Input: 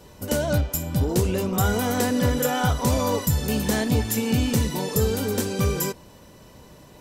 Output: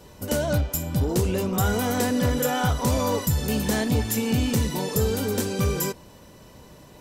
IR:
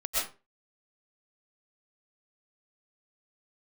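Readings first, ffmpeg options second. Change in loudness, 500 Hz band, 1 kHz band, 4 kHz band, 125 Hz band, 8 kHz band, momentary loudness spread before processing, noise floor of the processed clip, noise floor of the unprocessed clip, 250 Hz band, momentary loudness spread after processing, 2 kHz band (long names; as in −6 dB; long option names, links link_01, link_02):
−1.0 dB, −1.0 dB, −1.0 dB, −1.0 dB, −1.0 dB, −1.0 dB, 4 LU, −49 dBFS, −49 dBFS, −1.0 dB, 3 LU, −1.0 dB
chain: -af "asoftclip=type=tanh:threshold=-12.5dB"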